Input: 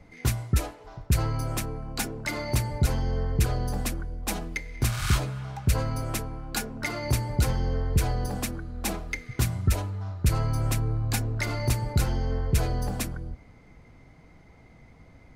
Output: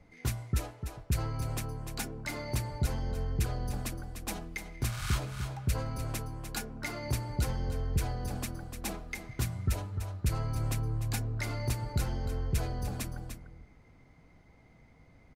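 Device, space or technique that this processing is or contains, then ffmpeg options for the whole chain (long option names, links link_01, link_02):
ducked delay: -filter_complex "[0:a]asplit=3[link_01][link_02][link_03];[link_02]adelay=298,volume=-8.5dB[link_04];[link_03]apad=whole_len=690097[link_05];[link_04][link_05]sidechaincompress=threshold=-25dB:ratio=8:attack=6.3:release=291[link_06];[link_01][link_06]amix=inputs=2:normalize=0,volume=-7dB"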